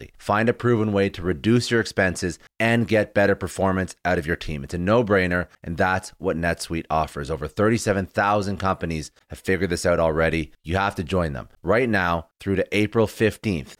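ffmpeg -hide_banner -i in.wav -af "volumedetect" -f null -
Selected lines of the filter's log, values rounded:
mean_volume: -22.5 dB
max_volume: -7.9 dB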